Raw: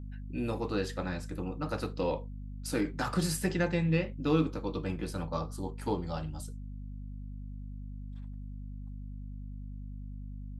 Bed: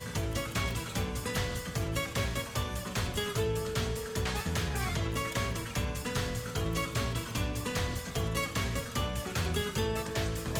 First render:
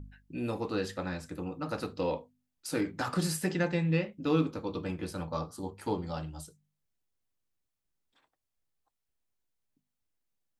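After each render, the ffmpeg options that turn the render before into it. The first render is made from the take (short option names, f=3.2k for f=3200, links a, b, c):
-af "bandreject=f=50:t=h:w=4,bandreject=f=100:t=h:w=4,bandreject=f=150:t=h:w=4,bandreject=f=200:t=h:w=4,bandreject=f=250:t=h:w=4"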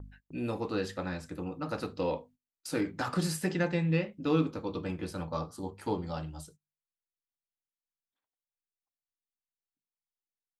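-af "agate=range=-22dB:threshold=-55dB:ratio=16:detection=peak,highshelf=f=7.9k:g=-4"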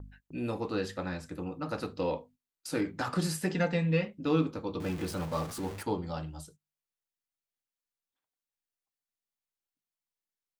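-filter_complex "[0:a]asettb=1/sr,asplit=3[a][b][c];[a]atrim=end=3.544[d];[b]atrim=start=3.54:end=4.08,asetpts=PTS-STARTPTS,afade=t=in:d=0.004:c=qsin,afade=t=out:st=0.536:d=0.004:c=qsin,aecho=1:1:4.3:0.65,atrim=end_sample=23814[e];[c]atrim=start=4.076[f];[d][e]acrossfade=d=0.004:c1=hsin:c2=qsin[g];[g][f]acrossfade=d=0.004:c1=qsin:c2=hsin,asettb=1/sr,asplit=3[h][i][j];[h]atrim=end=4.804[k];[i]atrim=start=4.8:end=5.83,asetpts=PTS-STARTPTS,afade=t=in:d=0.004:c=qsin,afade=t=out:st=1.026:d=0.004:c=qsin,aeval=exprs='val(0)+0.5*0.0126*sgn(val(0))':c=same[l];[j]atrim=start=5.826[m];[k][l]acrossfade=d=0.004:c1=hsin:c2=qsin[n];[n][m]acrossfade=d=0.004:c1=qsin:c2=hsin"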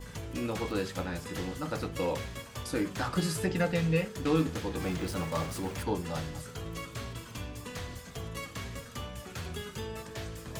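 -filter_complex "[1:a]volume=-7.5dB[a];[0:a][a]amix=inputs=2:normalize=0"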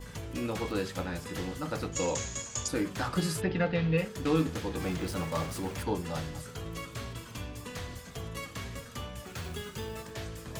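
-filter_complex "[0:a]asettb=1/sr,asplit=3[a][b][c];[a]atrim=end=1.924[d];[b]atrim=start=1.92:end=2.68,asetpts=PTS-STARTPTS,afade=t=in:d=0.004:c=qsin,afade=t=out:st=0.756:d=0.004:c=qsin,lowpass=f=6.8k:t=q:w=13[e];[c]atrim=start=2.676[f];[d][e]acrossfade=d=0.004:c1=hsin:c2=qsin[g];[g][f]acrossfade=d=0.004:c1=qsin:c2=hsin,asplit=3[h][i][j];[h]afade=t=out:st=3.4:d=0.02[k];[i]lowpass=f=4.1k:w=0.5412,lowpass=f=4.1k:w=1.3066,afade=t=in:st=3.4:d=0.02,afade=t=out:st=3.97:d=0.02[l];[j]afade=t=in:st=3.97:d=0.02[m];[k][l][m]amix=inputs=3:normalize=0,asettb=1/sr,asplit=3[n][o][p];[n]atrim=end=9.264[q];[o]atrim=start=9.26:end=10.11,asetpts=PTS-STARTPTS,afade=t=in:d=0.004:c=qsin,afade=t=out:st=0.846:d=0.004:c=qsin,acrusher=bits=4:mode=log:mix=0:aa=0.000001[r];[p]atrim=start=10.106[s];[q][r]acrossfade=d=0.004:c1=hsin:c2=qsin[t];[t][s]acrossfade=d=0.004:c1=qsin:c2=hsin"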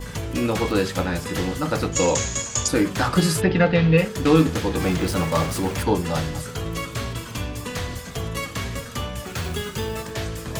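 -af "volume=11dB"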